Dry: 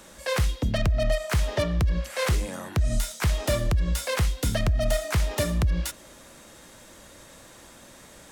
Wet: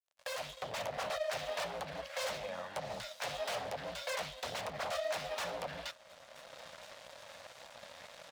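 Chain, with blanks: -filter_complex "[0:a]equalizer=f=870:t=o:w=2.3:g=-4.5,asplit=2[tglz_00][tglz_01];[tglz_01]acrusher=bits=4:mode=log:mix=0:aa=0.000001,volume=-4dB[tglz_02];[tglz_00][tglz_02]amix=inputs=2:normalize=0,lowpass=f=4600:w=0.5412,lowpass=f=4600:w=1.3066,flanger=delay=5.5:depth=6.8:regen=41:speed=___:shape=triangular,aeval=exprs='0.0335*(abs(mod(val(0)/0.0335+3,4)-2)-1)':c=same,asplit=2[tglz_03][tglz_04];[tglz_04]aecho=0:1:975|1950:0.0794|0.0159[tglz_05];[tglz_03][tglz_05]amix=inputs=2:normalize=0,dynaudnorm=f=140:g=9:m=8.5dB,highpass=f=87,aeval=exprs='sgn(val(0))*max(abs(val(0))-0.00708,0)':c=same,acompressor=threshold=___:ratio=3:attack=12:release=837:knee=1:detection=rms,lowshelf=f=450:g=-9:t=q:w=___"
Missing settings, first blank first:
1.7, -39dB, 3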